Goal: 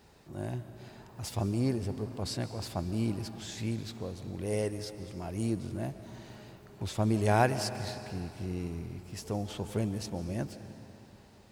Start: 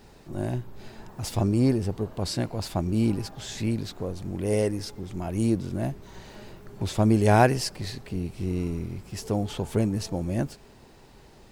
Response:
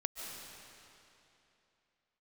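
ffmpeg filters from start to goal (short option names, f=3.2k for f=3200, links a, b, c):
-filter_complex "[0:a]highpass=54,equalizer=f=270:t=o:w=1.9:g=-3,asplit=2[a][b];[1:a]atrim=start_sample=2205[c];[b][c]afir=irnorm=-1:irlink=0,volume=-6dB[d];[a][d]amix=inputs=2:normalize=0,volume=-8.5dB"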